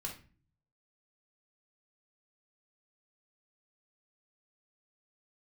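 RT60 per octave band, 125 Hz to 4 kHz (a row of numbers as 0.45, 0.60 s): 0.90, 0.65, 0.40, 0.35, 0.35, 0.30 s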